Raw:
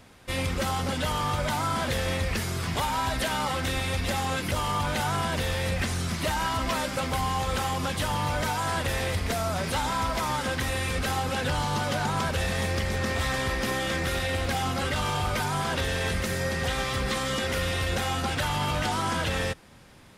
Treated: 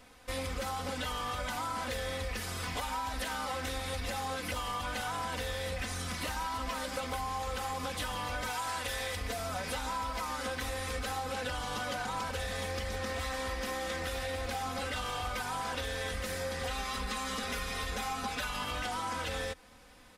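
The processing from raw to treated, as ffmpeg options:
-filter_complex "[0:a]asettb=1/sr,asplit=3[s0][s1][s2];[s0]atrim=end=8.504[s3];[s1]atrim=start=8.5:end=9.17,asetpts=PTS-STARTPTS,afade=t=in:d=0.004:c=qsin,afade=t=out:st=0.666:d=0.004:c=qsin,tiltshelf=f=970:g=-3.5[s4];[s2]atrim=start=9.166[s5];[s3][s4]acrossfade=d=0.004:c1=hsin:c2=qsin[s6];[s6][s5]acrossfade=d=0.004:c1=qsin:c2=hsin,asettb=1/sr,asplit=3[s7][s8][s9];[s7]atrim=end=16.704[s10];[s8]atrim=start=16.7:end=18.64,asetpts=PTS-STARTPTS,afade=t=in:d=0.004:c=qsin,afade=t=out:st=1.936:d=0.004:c=qsin,aecho=1:1:4.8:0.65,atrim=end_sample=85554[s11];[s9]atrim=start=18.636[s12];[s10][s11]acrossfade=d=0.004:c1=hsin:c2=qsin[s13];[s13][s12]acrossfade=d=0.004:c1=qsin:c2=hsin,equalizer=f=190:t=o:w=1.2:g=-7.5,aecho=1:1:4:0.74,acompressor=threshold=0.0398:ratio=6,volume=0.596"

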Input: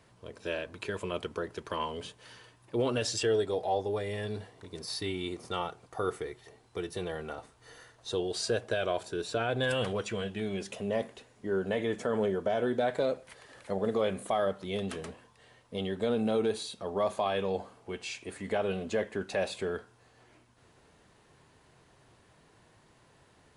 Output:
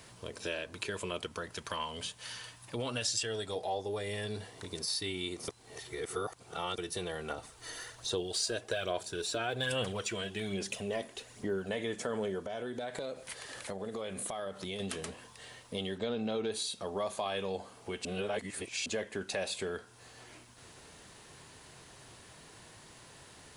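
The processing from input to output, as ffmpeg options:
-filter_complex "[0:a]asettb=1/sr,asplit=3[s0][s1][s2];[s0]atrim=end=1.264[s3];[s1]atrim=start=1.26:end=3.56,asetpts=PTS-STARTPTS,afade=t=in:d=0.004:c=qsin,afade=t=out:st=2.296:d=0.004:c=qsin,equalizer=f=380:w=1.9:g=-8.5[s4];[s2]atrim=start=3.556[s5];[s3][s4]acrossfade=d=0.004:c1=hsin:c2=qsin[s6];[s6][s5]acrossfade=d=0.004:c1=qsin:c2=hsin,asettb=1/sr,asplit=3[s7][s8][s9];[s7]atrim=end=7.304[s10];[s8]atrim=start=7.3:end=11.69,asetpts=PTS-STARTPTS,afade=t=in:d=0.004:c=qsin,afade=t=out:st=4.386:d=0.004:c=qsin,aphaser=in_gain=1:out_gain=1:delay=3.2:decay=0.41:speed=1.2:type=sinusoidal[s11];[s9]atrim=start=11.686[s12];[s10][s11]acrossfade=d=0.004:c1=hsin:c2=qsin[s13];[s13][s12]acrossfade=d=0.004:c1=qsin:c2=hsin,asettb=1/sr,asplit=3[s14][s15][s16];[s14]atrim=end=12.434[s17];[s15]atrim=start=12.43:end=14.8,asetpts=PTS-STARTPTS,afade=t=in:d=0.004:c=qsin,afade=t=out:st=2.366:d=0.004:c=qsin,acompressor=threshold=0.0141:ratio=3:attack=3.2:release=140:knee=1:detection=peak[s18];[s16]atrim=start=14.796[s19];[s17][s18]acrossfade=d=0.004:c1=hsin:c2=qsin[s20];[s20][s19]acrossfade=d=0.004:c1=qsin:c2=hsin,asettb=1/sr,asplit=3[s21][s22][s23];[s21]atrim=end=15.984[s24];[s22]atrim=start=15.98:end=16.52,asetpts=PTS-STARTPTS,afade=t=in:d=0.004:c=qsin,afade=t=out:st=0.536:d=0.004:c=qsin,lowpass=f=5900:w=0.5412,lowpass=f=5900:w=1.3066[s25];[s23]atrim=start=16.516[s26];[s24][s25]acrossfade=d=0.004:c1=hsin:c2=qsin[s27];[s27][s26]acrossfade=d=0.004:c1=qsin:c2=hsin,asplit=5[s28][s29][s30][s31][s32];[s28]atrim=end=5.482[s33];[s29]atrim=start=5.478:end=6.782,asetpts=PTS-STARTPTS,areverse[s34];[s30]atrim=start=6.778:end=18.052[s35];[s31]atrim=start=18.048:end=18.862,asetpts=PTS-STARTPTS,areverse[s36];[s32]atrim=start=18.858[s37];[s33][s34]acrossfade=d=0.004:c1=hsin:c2=hsin[s38];[s38][s35]acrossfade=d=0.004:c1=hsin:c2=hsin[s39];[s39][s36]acrossfade=d=0.004:c1=hsin:c2=hsin[s40];[s40][s37]acrossfade=d=0.004:c1=hsin:c2=hsin,highshelf=f=2800:g=11,acompressor=threshold=0.00501:ratio=2,volume=1.78"

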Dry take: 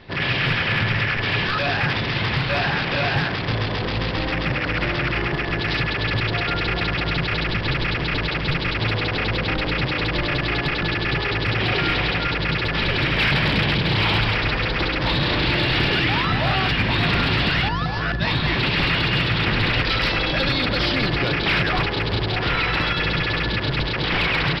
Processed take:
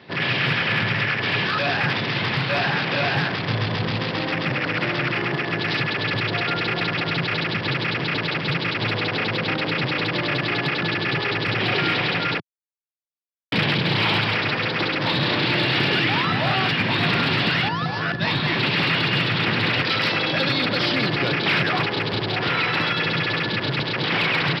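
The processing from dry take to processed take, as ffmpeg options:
-filter_complex "[0:a]asettb=1/sr,asplit=3[s0][s1][s2];[s0]atrim=end=3.244[s3];[s1]atrim=start=3.24:end=3.96,asetpts=PTS-STARTPTS,afade=t=in:d=0.004:c=qsin,afade=t=out:st=0.716:d=0.004:c=qsin,asubboost=boost=11:cutoff=180[s4];[s2]atrim=start=3.956[s5];[s3][s4]acrossfade=d=0.004:c1=hsin:c2=qsin[s6];[s6][s5]acrossfade=d=0.004:c1=qsin:c2=hsin,asplit=3[s7][s8][s9];[s7]atrim=end=12.4,asetpts=PTS-STARTPTS,afade=t=out:st=12.396:d=0.004:c=hsin[s10];[s8]atrim=start=12.4:end=13.52,asetpts=PTS-STARTPTS,volume=0[s11];[s9]atrim=start=13.52,asetpts=PTS-STARTPTS,afade=t=in:d=0.004:c=hsin[s12];[s10][s11][s12]concat=n=3:v=0:a=1,highpass=f=120:w=0.5412,highpass=f=120:w=1.3066"

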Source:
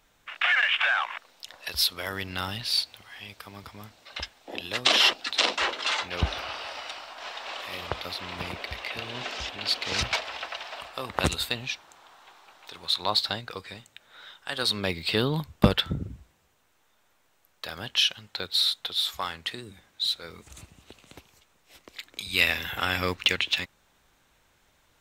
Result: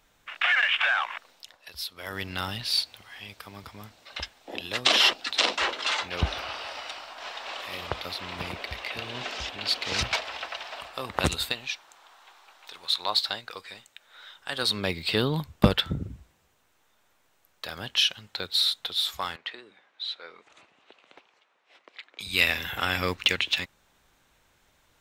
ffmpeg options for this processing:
-filter_complex "[0:a]asettb=1/sr,asplit=3[s0][s1][s2];[s0]atrim=end=11.524[s3];[s1]atrim=start=11.52:end=14.36,asetpts=PTS-STARTPTS,afade=t=in:d=0.004:c=qsin,afade=t=out:st=2.836:d=0.004:c=qsin,equalizer=f=100:w=0.33:g=-13[s4];[s2]atrim=start=14.356[s5];[s3][s4]acrossfade=d=0.004:c1=hsin:c2=qsin[s6];[s6][s5]acrossfade=d=0.004:c1=qsin:c2=hsin,asettb=1/sr,asplit=3[s7][s8][s9];[s7]atrim=end=19.364[s10];[s8]atrim=start=19.36:end=22.2,asetpts=PTS-STARTPTS,afade=t=in:d=0.004:c=qsin,afade=t=out:st=2.836:d=0.004:c=qsin,highpass=500,lowpass=2900[s11];[s9]atrim=start=22.196[s12];[s10][s11]acrossfade=d=0.004:c1=hsin:c2=qsin[s13];[s13][s12]acrossfade=d=0.004:c1=qsin:c2=hsin,asplit=3[s14][s15][s16];[s14]atrim=end=1.58,asetpts=PTS-STARTPTS,afade=t=out:st=1.31:d=0.27:silence=0.281838[s17];[s15]atrim=start=1.58:end=1.94,asetpts=PTS-STARTPTS,volume=0.282[s18];[s16]atrim=start=1.94,asetpts=PTS-STARTPTS,afade=t=in:d=0.27:silence=0.281838[s19];[s17][s18][s19]concat=n=3:v=0:a=1"

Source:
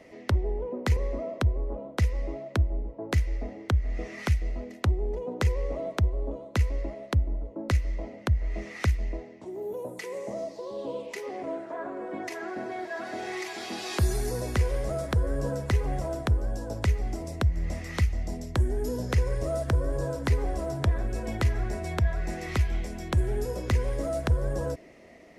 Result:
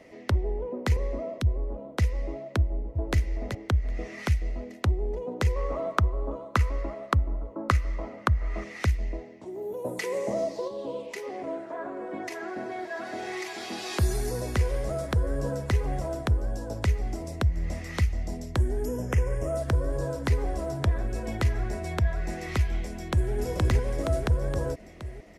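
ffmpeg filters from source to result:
-filter_complex "[0:a]asettb=1/sr,asplit=3[s0][s1][s2];[s0]atrim=end=1.384[s3];[s1]atrim=start=1.38:end=1.95,asetpts=PTS-STARTPTS,afade=t=in:d=0.004:c=qsin,afade=t=out:st=0.566:d=0.004:c=qsin,acrossover=split=280|3000[s4][s5][s6];[s5]acompressor=threshold=0.0141:ratio=6:attack=3.2:release=140:knee=2.83:detection=peak[s7];[s4][s7][s6]amix=inputs=3:normalize=0[s8];[s2]atrim=start=1.946[s9];[s3][s8]acrossfade=d=0.004:c1=hsin:c2=qsin[s10];[s10][s9]acrossfade=d=0.004:c1=qsin:c2=hsin,asplit=2[s11][s12];[s12]afade=t=in:st=2.57:d=0.01,afade=t=out:st=3.16:d=0.01,aecho=0:1:380|760:0.501187|0.0501187[s13];[s11][s13]amix=inputs=2:normalize=0,asettb=1/sr,asplit=3[s14][s15][s16];[s14]atrim=end=5.564[s17];[s15]atrim=start=5.56:end=8.64,asetpts=PTS-STARTPTS,afade=t=in:d=0.004:c=qsin,afade=t=out:st=3.076:d=0.004:c=qsin,equalizer=f=1200:w=2:g=14.5[s18];[s16]atrim=start=8.636[s19];[s17][s18]acrossfade=d=0.004:c1=hsin:c2=qsin[s20];[s20][s19]acrossfade=d=0.004:c1=qsin:c2=hsin,asplit=3[s21][s22][s23];[s21]afade=t=out:st=9.84:d=0.02[s24];[s22]acontrast=52,afade=t=in:st=9.84:d=0.02,afade=t=out:st=10.67:d=0.02[s25];[s23]afade=t=in:st=10.67:d=0.02[s26];[s24][s25][s26]amix=inputs=3:normalize=0,asettb=1/sr,asplit=3[s27][s28][s29];[s27]atrim=end=18.854[s30];[s28]atrim=start=18.85:end=19.57,asetpts=PTS-STARTPTS,afade=t=in:d=0.004:c=qsin,afade=t=out:st=0.716:d=0.004:c=qsin,asuperstop=centerf=4200:order=4:qfactor=1.6[s31];[s29]atrim=start=19.566[s32];[s30][s31]acrossfade=d=0.004:c1=hsin:c2=qsin[s33];[s33][s32]acrossfade=d=0.004:c1=qsin:c2=hsin,asplit=2[s34][s35];[s35]afade=t=in:st=22.91:d=0.01,afade=t=out:st=23.32:d=0.01,aecho=0:1:470|940|1410|1880|2350|2820|3290|3760|4230:0.944061|0.566437|0.339862|0.203917|0.12235|0.0734102|0.0440461|0.0264277|0.0158566[s36];[s34][s36]amix=inputs=2:normalize=0"

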